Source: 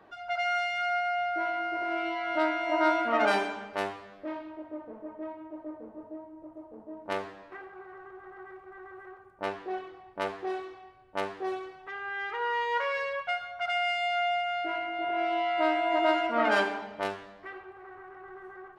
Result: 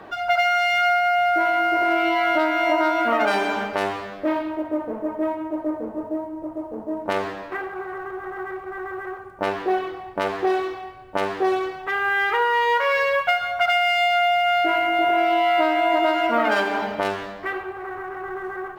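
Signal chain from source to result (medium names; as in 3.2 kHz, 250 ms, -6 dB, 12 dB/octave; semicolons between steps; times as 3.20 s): compression 12:1, threshold -31 dBFS, peak gain reduction 12 dB; loudness maximiser +22.5 dB; trim -7.5 dB; IMA ADPCM 176 kbps 44.1 kHz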